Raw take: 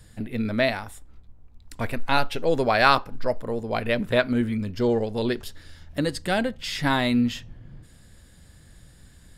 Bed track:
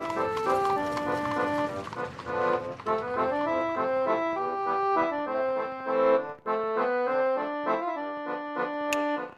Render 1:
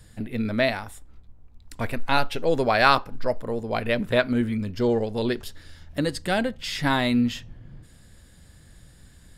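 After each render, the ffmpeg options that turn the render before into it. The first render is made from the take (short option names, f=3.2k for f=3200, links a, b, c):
-af anull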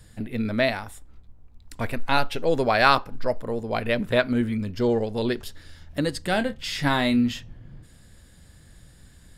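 -filter_complex "[0:a]asettb=1/sr,asplit=3[a][b][c];[a]atrim=end=6.304[d];[b]atrim=start=6.3:end=7.33,asetpts=PTS-STARTPTS,afade=t=in:d=0.004:c=qsin,afade=t=out:st=1.026:d=0.004:c=qsin,asplit=2[e][f];[f]adelay=28,volume=-11dB[g];[e][g]amix=inputs=2:normalize=0,atrim=end_sample=45423[h];[c]atrim=start=7.326[i];[d][h]acrossfade=d=0.004:c1=hsin:c2=qsin[j];[j][i]acrossfade=d=0.004:c1=qsin:c2=hsin"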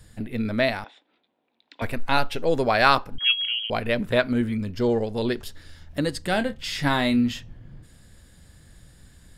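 -filter_complex "[0:a]asettb=1/sr,asplit=3[a][b][c];[a]atrim=end=0.844[d];[b]atrim=start=0.84:end=1.82,asetpts=PTS-STARTPTS,afade=t=in:d=0.004:c=qsin,afade=t=out:st=0.976:d=0.004:c=qsin,highpass=f=310:w=0.5412,highpass=f=310:w=1.3066,equalizer=f=400:t=q:w=4:g=-6,equalizer=f=1.2k:t=q:w=4:g=-7,equalizer=f=2.5k:t=q:w=4:g=4,equalizer=f=3.6k:t=q:w=4:g=8,lowpass=f=4k:w=0.5412,lowpass=f=4k:w=1.3066[e];[c]atrim=start=1.816[f];[d][e]acrossfade=d=0.004:c1=hsin:c2=qsin[g];[g][f]acrossfade=d=0.004:c1=qsin:c2=hsin,asettb=1/sr,asplit=3[h][i][j];[h]atrim=end=3.184[k];[i]atrim=start=3.18:end=3.7,asetpts=PTS-STARTPTS,afade=t=in:d=0.004:c=qsin,afade=t=out:st=0.516:d=0.004:c=qsin,lowpass=f=2.8k:t=q:w=0.5098,lowpass=f=2.8k:t=q:w=0.6013,lowpass=f=2.8k:t=q:w=0.9,lowpass=f=2.8k:t=q:w=2.563,afreqshift=-3300[l];[j]atrim=start=3.696[m];[k][l]acrossfade=d=0.004:c1=hsin:c2=qsin[n];[n][m]acrossfade=d=0.004:c1=qsin:c2=hsin"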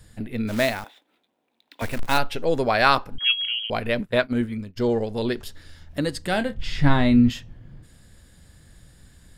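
-filter_complex "[0:a]asplit=3[a][b][c];[a]afade=t=out:st=0.47:d=0.02[d];[b]acrusher=bits=3:mode=log:mix=0:aa=0.000001,afade=t=in:st=0.47:d=0.02,afade=t=out:st=2.17:d=0.02[e];[c]afade=t=in:st=2.17:d=0.02[f];[d][e][f]amix=inputs=3:normalize=0,asplit=3[g][h][i];[g]afade=t=out:st=4:d=0.02[j];[h]agate=range=-33dB:threshold=-23dB:ratio=3:release=100:detection=peak,afade=t=in:st=4:d=0.02,afade=t=out:st=4.76:d=0.02[k];[i]afade=t=in:st=4.76:d=0.02[l];[j][k][l]amix=inputs=3:normalize=0,asettb=1/sr,asplit=3[m][n][o];[m]atrim=end=6.554[p];[n]atrim=start=6.55:end=7.3,asetpts=PTS-STARTPTS,afade=t=in:d=0.004:c=qsin,afade=t=out:st=0.746:d=0.004:c=qsin,aemphasis=mode=reproduction:type=bsi[q];[o]atrim=start=7.296[r];[p][q]acrossfade=d=0.004:c1=hsin:c2=qsin[s];[s][r]acrossfade=d=0.004:c1=qsin:c2=hsin"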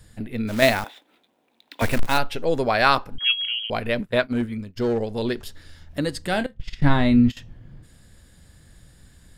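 -filter_complex "[0:a]asettb=1/sr,asplit=3[a][b][c];[a]atrim=end=0.624[d];[b]atrim=start=0.62:end=2.08,asetpts=PTS-STARTPTS,afade=t=in:d=0.004:c=qsin,afade=t=out:st=1.456:d=0.004:c=qsin,acontrast=64[e];[c]atrim=start=2.076[f];[d][e]acrossfade=d=0.004:c1=hsin:c2=qsin[g];[g][f]acrossfade=d=0.004:c1=qsin:c2=hsin,asettb=1/sr,asplit=3[h][i][j];[h]atrim=end=4.274[k];[i]atrim=start=4.27:end=5.31,asetpts=PTS-STARTPTS,afade=t=in:d=0.004:c=qsin,afade=t=out:st=1.036:d=0.004:c=qsin,asoftclip=type=hard:threshold=-17dB[l];[j]atrim=start=5.306[m];[k][l]acrossfade=d=0.004:c1=hsin:c2=qsin[n];[n][m]acrossfade=d=0.004:c1=qsin:c2=hsin,asettb=1/sr,asplit=3[o][p][q];[o]atrim=end=6.464[r];[p]atrim=start=6.46:end=7.37,asetpts=PTS-STARTPTS,afade=t=in:d=0.004:c=qsin,afade=t=out:st=0.906:d=0.004:c=qsin,agate=range=-16dB:threshold=-24dB:ratio=16:release=100:detection=peak[s];[q]atrim=start=7.366[t];[r][s]acrossfade=d=0.004:c1=hsin:c2=qsin[u];[u][t]acrossfade=d=0.004:c1=qsin:c2=hsin"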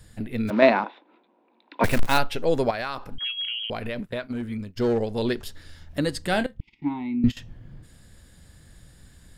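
-filter_complex "[0:a]asettb=1/sr,asplit=3[a][b][c];[a]atrim=end=0.504[d];[b]atrim=start=0.5:end=1.84,asetpts=PTS-STARTPTS,afade=t=in:d=0.004:c=qsin,afade=t=out:st=1.336:d=0.004:c=qsin,highpass=f=190:w=0.5412,highpass=f=190:w=1.3066,equalizer=f=200:t=q:w=4:g=5,equalizer=f=340:t=q:w=4:g=8,equalizer=f=530:t=q:w=4:g=3,equalizer=f=980:t=q:w=4:g=9,equalizer=f=1.9k:t=q:w=4:g=-4,equalizer=f=3.2k:t=q:w=4:g=-8,lowpass=f=3.4k:w=0.5412,lowpass=f=3.4k:w=1.3066[e];[c]atrim=start=1.836[f];[d][e]acrossfade=d=0.004:c1=hsin:c2=qsin[g];[g][f]acrossfade=d=0.004:c1=qsin:c2=hsin,asettb=1/sr,asplit=3[h][i][j];[h]atrim=end=2.704[k];[i]atrim=start=2.7:end=4.63,asetpts=PTS-STARTPTS,afade=t=in:d=0.004:c=qsin,afade=t=out:st=1.926:d=0.004:c=qsin,acompressor=threshold=-26dB:ratio=8:attack=3.2:release=140:knee=1:detection=peak[l];[j]atrim=start=4.626[m];[k][l]acrossfade=d=0.004:c1=hsin:c2=qsin[n];[n][m]acrossfade=d=0.004:c1=qsin:c2=hsin,asettb=1/sr,asplit=3[o][p][q];[o]atrim=end=6.604[r];[p]atrim=start=6.6:end=7.24,asetpts=PTS-STARTPTS,afade=t=in:d=0.004:c=qsin,afade=t=out:st=0.636:d=0.004:c=qsin,asplit=3[s][t][u];[s]bandpass=f=300:t=q:w=8,volume=0dB[v];[t]bandpass=f=870:t=q:w=8,volume=-6dB[w];[u]bandpass=f=2.24k:t=q:w=8,volume=-9dB[x];[v][w][x]amix=inputs=3:normalize=0[y];[q]atrim=start=7.236[z];[r][y]acrossfade=d=0.004:c1=hsin:c2=qsin[aa];[aa][z]acrossfade=d=0.004:c1=qsin:c2=hsin"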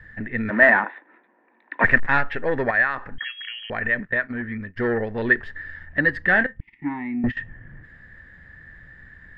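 -af "asoftclip=type=tanh:threshold=-15dB,lowpass=f=1.8k:t=q:w=16"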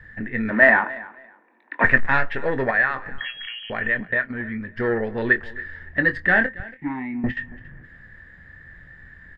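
-filter_complex "[0:a]asplit=2[a][b];[b]adelay=23,volume=-10dB[c];[a][c]amix=inputs=2:normalize=0,aecho=1:1:279|558:0.1|0.02"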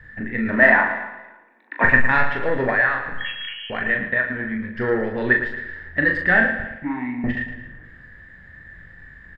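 -filter_complex "[0:a]asplit=2[a][b];[b]adelay=40,volume=-5dB[c];[a][c]amix=inputs=2:normalize=0,aecho=1:1:112|224|336|448|560:0.335|0.141|0.0591|0.0248|0.0104"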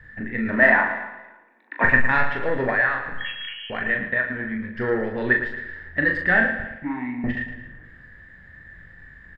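-af "volume=-2dB"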